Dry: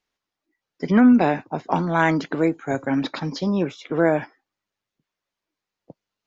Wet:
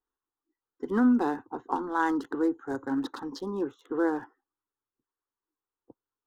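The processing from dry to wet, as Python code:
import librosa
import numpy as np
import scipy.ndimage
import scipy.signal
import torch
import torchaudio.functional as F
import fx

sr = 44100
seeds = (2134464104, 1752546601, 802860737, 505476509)

y = fx.wiener(x, sr, points=9)
y = fx.fixed_phaser(y, sr, hz=620.0, stages=6)
y = y * 10.0 ** (-4.5 / 20.0)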